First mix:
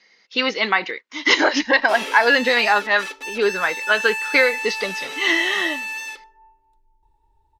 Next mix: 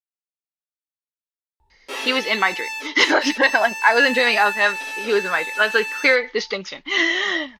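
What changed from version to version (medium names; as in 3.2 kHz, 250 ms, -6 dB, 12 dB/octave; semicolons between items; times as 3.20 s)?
speech: entry +1.70 s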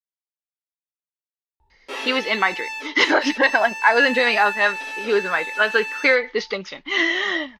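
master: add low-pass 4 kHz 6 dB/octave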